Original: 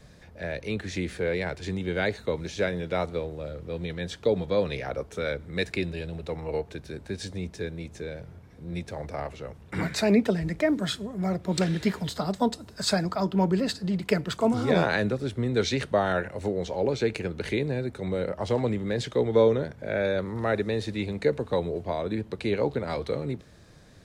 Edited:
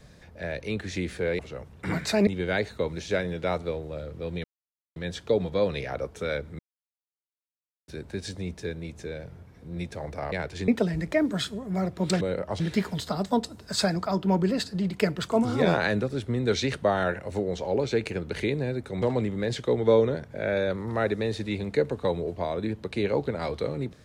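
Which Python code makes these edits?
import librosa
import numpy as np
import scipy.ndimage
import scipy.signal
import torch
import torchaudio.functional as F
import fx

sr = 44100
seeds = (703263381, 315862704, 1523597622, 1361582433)

y = fx.edit(x, sr, fx.swap(start_s=1.39, length_s=0.36, other_s=9.28, other_length_s=0.88),
    fx.insert_silence(at_s=3.92, length_s=0.52),
    fx.silence(start_s=5.55, length_s=1.29),
    fx.move(start_s=18.11, length_s=0.39, to_s=11.69), tone=tone)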